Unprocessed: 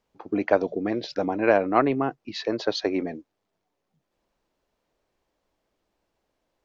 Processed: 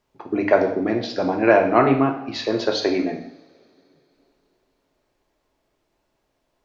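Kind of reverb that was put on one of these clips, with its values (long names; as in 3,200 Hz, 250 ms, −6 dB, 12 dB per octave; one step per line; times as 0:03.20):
coupled-rooms reverb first 0.66 s, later 3.5 s, from −27 dB, DRR 1.5 dB
level +3 dB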